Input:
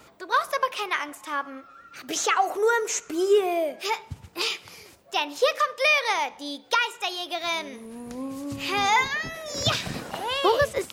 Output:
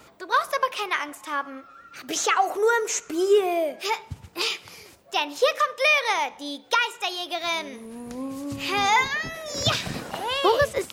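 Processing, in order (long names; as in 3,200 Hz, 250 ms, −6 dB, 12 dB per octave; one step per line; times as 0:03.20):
0:05.43–0:06.82: notch filter 4,700 Hz, Q 11
level +1 dB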